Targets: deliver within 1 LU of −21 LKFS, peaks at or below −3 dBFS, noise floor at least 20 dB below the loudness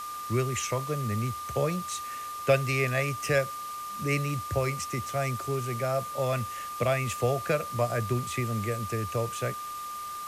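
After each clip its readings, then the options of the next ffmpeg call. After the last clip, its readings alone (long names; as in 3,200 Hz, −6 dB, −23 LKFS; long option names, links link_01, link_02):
interfering tone 1,200 Hz; level of the tone −35 dBFS; background noise floor −38 dBFS; target noise floor −50 dBFS; integrated loudness −29.5 LKFS; sample peak −11.5 dBFS; target loudness −21.0 LKFS
→ -af "bandreject=frequency=1200:width=30"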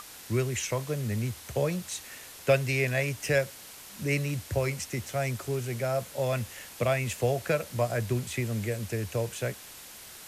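interfering tone none found; background noise floor −47 dBFS; target noise floor −50 dBFS
→ -af "afftdn=noise_reduction=6:noise_floor=-47"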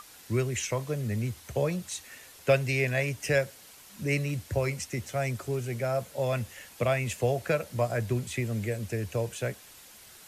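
background noise floor −52 dBFS; integrated loudness −30.5 LKFS; sample peak −11.5 dBFS; target loudness −21.0 LKFS
→ -af "volume=9.5dB,alimiter=limit=-3dB:level=0:latency=1"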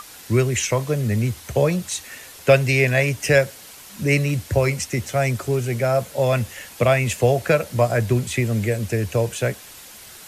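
integrated loudness −21.0 LKFS; sample peak −3.0 dBFS; background noise floor −42 dBFS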